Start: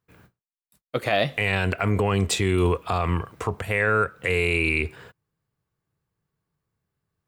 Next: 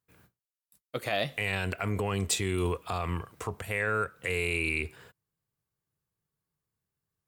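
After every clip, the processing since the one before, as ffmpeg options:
-af "aemphasis=mode=production:type=cd,volume=-8dB"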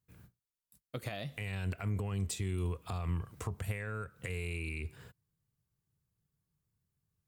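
-af "acompressor=threshold=-36dB:ratio=4,bass=f=250:g=12,treble=f=4k:g=3,volume=-4.5dB"

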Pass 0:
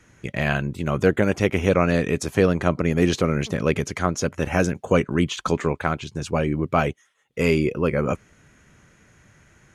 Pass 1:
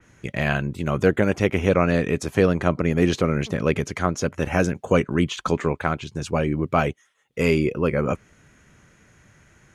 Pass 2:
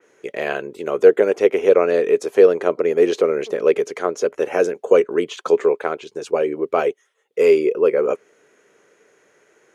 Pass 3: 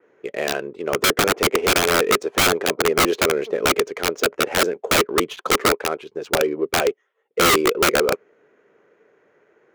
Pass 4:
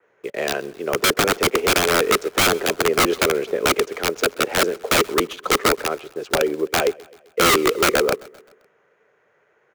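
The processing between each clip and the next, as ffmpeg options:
-af "adynamicequalizer=threshold=0.0126:dfrequency=3600:dqfactor=0.7:tfrequency=3600:tqfactor=0.7:attack=5:release=100:ratio=0.375:range=2:mode=cutabove:tftype=highshelf"
-af "highpass=f=430:t=q:w=4.9,volume=-2.5dB"
-af "adynamicsmooth=sensitivity=7:basefreq=2.1k,aeval=exprs='(mod(3.35*val(0)+1,2)-1)/3.35':c=same"
-filter_complex "[0:a]acrossover=split=190|450|5300[a][b][c][d];[b]acrusher=bits=7:mix=0:aa=0.000001[e];[a][e][c][d]amix=inputs=4:normalize=0,aecho=1:1:130|260|390|520:0.0708|0.0382|0.0206|0.0111"

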